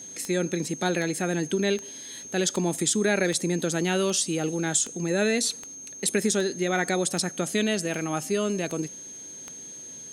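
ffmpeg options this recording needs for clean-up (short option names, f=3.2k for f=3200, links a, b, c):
-af "adeclick=t=4,bandreject=f=6.4k:w=30"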